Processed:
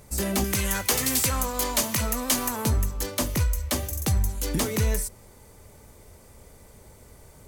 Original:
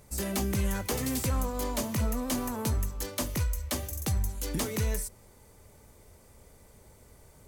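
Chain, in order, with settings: 0.44–2.65 tilt shelf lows -6 dB, about 830 Hz; gain +5.5 dB

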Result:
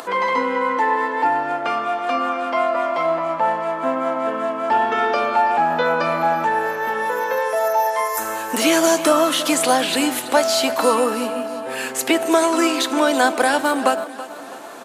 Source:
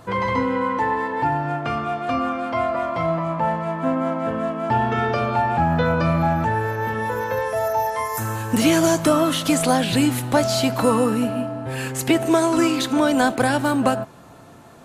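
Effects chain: upward compressor, threshold -29 dBFS; Bessel high-pass 410 Hz, order 4; feedback echo 0.329 s, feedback 50%, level -15 dB; gain +4 dB

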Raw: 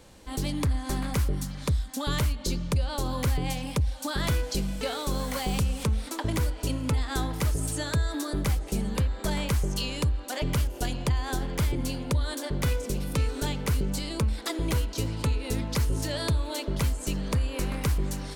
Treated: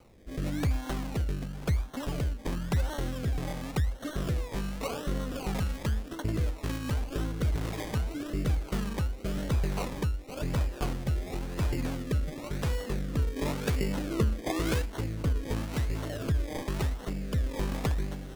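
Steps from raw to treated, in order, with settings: 13.36–14.82 bell 490 Hz +7 dB 2.3 oct; decimation with a swept rate 25×, swing 60% 0.92 Hz; rotary speaker horn 1 Hz; gain -1.5 dB

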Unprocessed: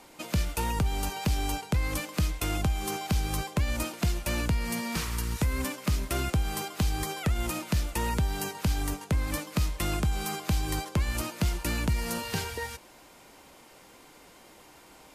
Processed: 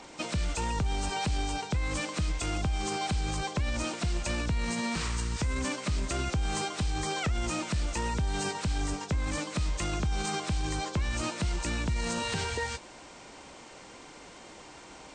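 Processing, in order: nonlinear frequency compression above 3300 Hz 1.5:1; limiter -27.5 dBFS, peak gain reduction 10 dB; added harmonics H 6 -41 dB, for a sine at -27.5 dBFS; gain +5 dB

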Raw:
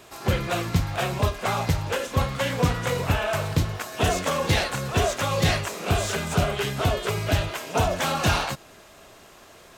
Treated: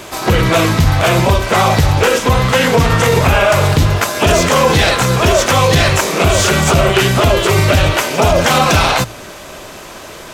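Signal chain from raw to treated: notches 60/120 Hz; wide varispeed 0.946×; maximiser +18.5 dB; gain -1 dB

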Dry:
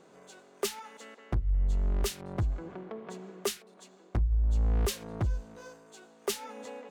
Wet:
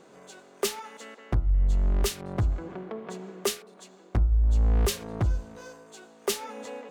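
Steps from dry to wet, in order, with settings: de-hum 84.07 Hz, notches 18; gain +4.5 dB

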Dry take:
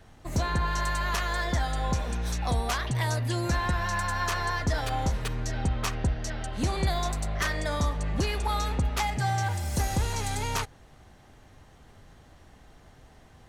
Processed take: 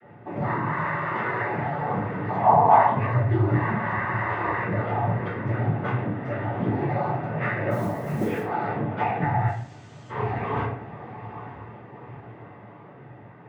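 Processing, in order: LPF 1900 Hz 24 dB/oct; notch comb 1200 Hz; compressor, threshold -32 dBFS, peak gain reduction 8 dB; diffused feedback echo 0.886 s, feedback 52%, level -13 dB; 9.47–10.09 room tone; noise vocoder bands 16; 2.29–2.92 band shelf 830 Hz +15.5 dB 1 oct; 7.7–8.42 modulation noise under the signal 23 dB; reverb RT60 0.50 s, pre-delay 4 ms, DRR -9 dB

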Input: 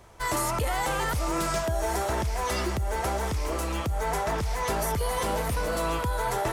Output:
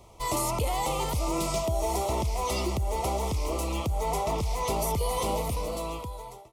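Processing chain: ending faded out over 1.23 s; Butterworth band-stop 1600 Hz, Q 1.6

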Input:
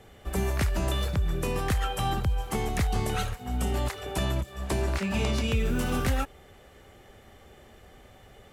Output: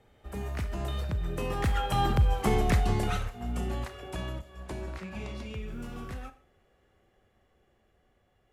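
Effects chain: Doppler pass-by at 2.38, 13 m/s, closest 6.6 m; high shelf 4300 Hz -7.5 dB; on a send: reverb RT60 0.40 s, pre-delay 30 ms, DRR 11.5 dB; on the sum: gain +4 dB

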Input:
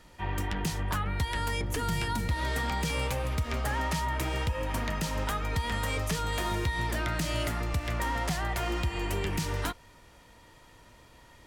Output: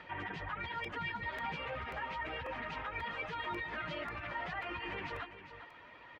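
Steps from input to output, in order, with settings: LPF 2500 Hz 24 dB/oct; reverb removal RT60 1.3 s; HPF 52 Hz 6 dB/oct; tilt +3.5 dB/oct; compressor 2:1, threshold -48 dBFS, peak gain reduction 10 dB; limiter -38 dBFS, peak gain reduction 8 dB; plain phase-vocoder stretch 0.54×; on a send: echo 0.402 s -11 dB; on the sum: crackling interface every 0.54 s, samples 128, repeat, from 0.84; gain +9.5 dB

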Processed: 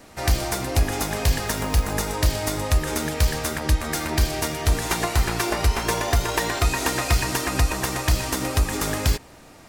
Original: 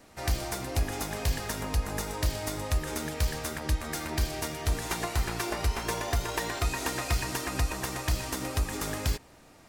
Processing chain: 1.47–1.93 short-mantissa float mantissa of 2-bit; gain +8 dB

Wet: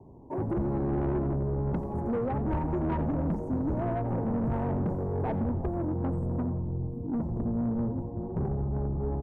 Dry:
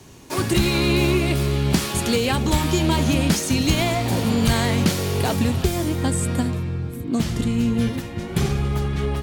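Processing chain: elliptic low-pass 950 Hz, stop band 40 dB; soft clip -21 dBFS, distortion -11 dB; frequency-shifting echo 87 ms, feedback 58%, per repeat -110 Hz, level -13 dB; gain -4 dB

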